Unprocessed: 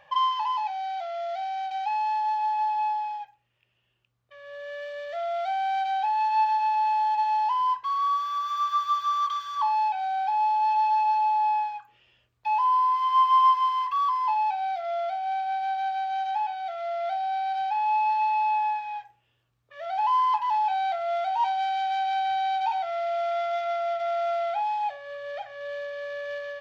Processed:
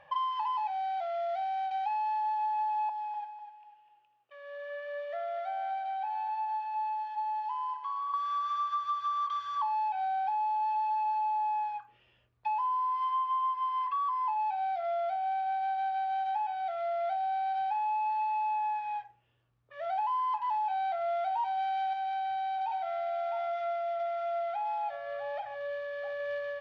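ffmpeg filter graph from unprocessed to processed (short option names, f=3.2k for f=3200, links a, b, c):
-filter_complex "[0:a]asettb=1/sr,asplit=3[a][b][c];[a]atrim=end=2.894[d];[b]atrim=start=2.89:end=8.14,asetpts=PTS-STARTPTS,afade=t=in:d=0.004:c=qsin,afade=t=out:st=5.246:d=0.004:c=qsin,highpass=410,acrossover=split=590|2400[e][f][g];[e]acompressor=threshold=-47dB:ratio=4[h];[f]acompressor=threshold=-36dB:ratio=4[i];[g]acompressor=threshold=-58dB:ratio=4[j];[h][i][j]amix=inputs=3:normalize=0,aecho=1:1:249|498|747|996:0.355|0.135|0.0512|0.0195,atrim=end_sample=231525[k];[c]atrim=start=8.136[l];[d][k]acrossfade=d=0.004:c1=hsin:c2=qsin[m];[m][l]acrossfade=d=0.004:c1=qsin:c2=hsin,asettb=1/sr,asplit=3[n][o][p];[n]atrim=end=13.104[q];[o]atrim=start=13.1:end=14.4,asetpts=PTS-STARTPTS,afade=t=in:d=0.004:c=qsin,afade=t=out:st=1.296:d=0.004:c=qsin,lowpass=f=3.6k:p=1,bandreject=f=60:t=h:w=6,bandreject=f=120:t=h:w=6,bandreject=f=180:t=h:w=6[r];[p]atrim=start=14.396[s];[q][r]acrossfade=d=0.004:c1=hsin:c2=qsin[t];[t][s]acrossfade=d=0.004:c1=qsin:c2=hsin,asettb=1/sr,asplit=3[u][v][w];[u]atrim=end=21.934[x];[v]atrim=start=21.93:end=26.2,asetpts=PTS-STARTPTS,afade=t=in:d=0.004:c=qsin,afade=t=out:st=4.266:d=0.004:c=qsin,acompressor=threshold=-33dB:ratio=2:attack=3.2:release=140:knee=1:detection=peak,aecho=1:1:654:0.266,atrim=end_sample=188307[y];[w]atrim=start=26.196[z];[x][y]acrossfade=d=0.004:c1=hsin:c2=qsin[aa];[aa][z]acrossfade=d=0.004:c1=qsin:c2=hsin,lowpass=f=1.8k:p=1,acompressor=threshold=-29dB:ratio=6"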